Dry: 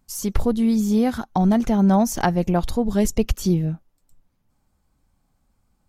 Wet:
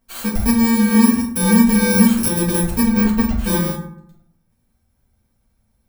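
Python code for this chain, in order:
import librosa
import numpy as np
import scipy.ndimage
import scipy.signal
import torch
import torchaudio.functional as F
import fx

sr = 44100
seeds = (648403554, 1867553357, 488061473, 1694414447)

y = fx.bit_reversed(x, sr, seeds[0], block=64)
y = fx.peak_eq(y, sr, hz=13000.0, db=-10.5, octaves=2.2, at=(2.87, 3.44))
y = fx.rev_fdn(y, sr, rt60_s=0.71, lf_ratio=1.3, hf_ratio=0.5, size_ms=26.0, drr_db=-5.5)
y = y * 10.0 ** (-4.5 / 20.0)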